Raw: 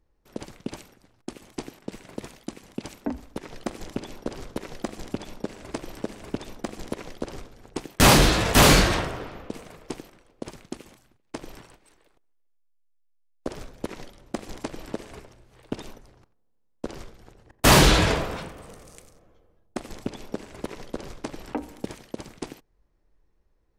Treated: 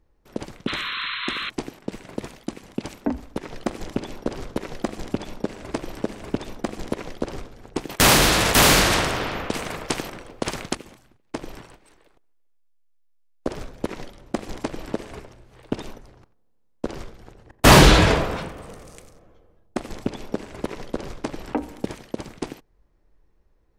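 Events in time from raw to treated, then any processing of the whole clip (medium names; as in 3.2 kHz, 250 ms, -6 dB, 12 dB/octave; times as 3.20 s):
0.67–1.50 s: painted sound noise 980–4200 Hz -33 dBFS
7.89–10.75 s: spectrum-flattening compressor 2:1
whole clip: treble shelf 4.4 kHz -5 dB; trim +5 dB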